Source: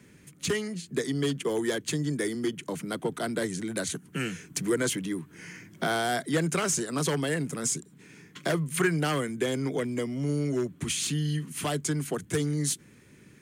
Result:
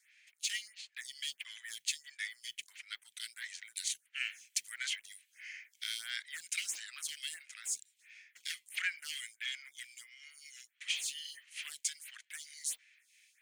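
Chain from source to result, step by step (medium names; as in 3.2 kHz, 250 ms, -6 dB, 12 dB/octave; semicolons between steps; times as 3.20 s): steep high-pass 2 kHz 36 dB/octave; treble shelf 7.5 kHz -11 dB; modulation noise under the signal 27 dB; lamp-driven phase shifter 1.5 Hz; trim +3.5 dB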